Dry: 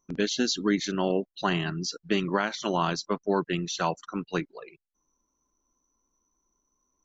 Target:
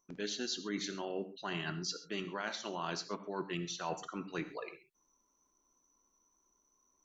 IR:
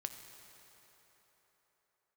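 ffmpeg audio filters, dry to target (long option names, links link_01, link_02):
-filter_complex "[0:a]lowshelf=frequency=230:gain=-9,areverse,acompressor=threshold=-37dB:ratio=10,areverse[link_01];[1:a]atrim=start_sample=2205,atrim=end_sample=6174[link_02];[link_01][link_02]afir=irnorm=-1:irlink=0,volume=4.5dB"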